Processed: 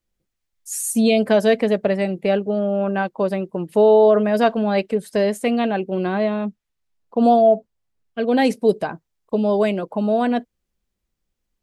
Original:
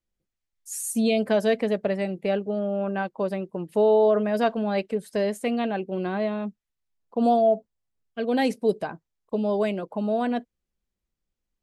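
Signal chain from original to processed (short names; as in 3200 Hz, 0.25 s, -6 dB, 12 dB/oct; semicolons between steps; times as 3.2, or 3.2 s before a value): 6.22–8.44 high shelf 9800 Hz -> 5100 Hz -6 dB; gain +6 dB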